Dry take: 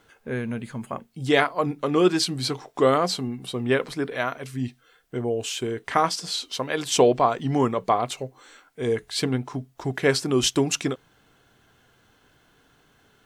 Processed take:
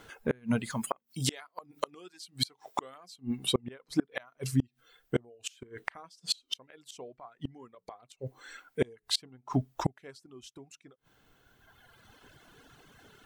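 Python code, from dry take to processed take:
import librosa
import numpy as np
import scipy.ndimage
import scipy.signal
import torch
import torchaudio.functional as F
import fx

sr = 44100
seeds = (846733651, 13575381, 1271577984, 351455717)

y = fx.dereverb_blind(x, sr, rt60_s=1.6)
y = fx.tilt_eq(y, sr, slope=2.5, at=(0.7, 3.16))
y = fx.gate_flip(y, sr, shuts_db=-21.0, range_db=-34)
y = y * 10.0 ** (6.0 / 20.0)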